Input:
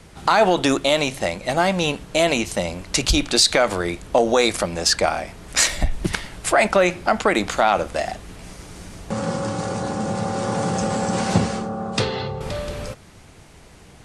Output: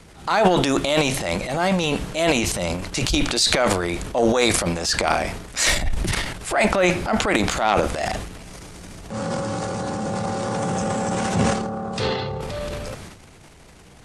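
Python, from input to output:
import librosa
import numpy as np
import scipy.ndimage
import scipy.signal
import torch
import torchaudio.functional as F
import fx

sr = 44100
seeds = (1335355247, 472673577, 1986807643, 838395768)

y = fx.peak_eq(x, sr, hz=4500.0, db=-6.5, octaves=0.34, at=(10.59, 11.55))
y = fx.transient(y, sr, attack_db=-7, sustain_db=11)
y = y * 10.0 ** (-1.5 / 20.0)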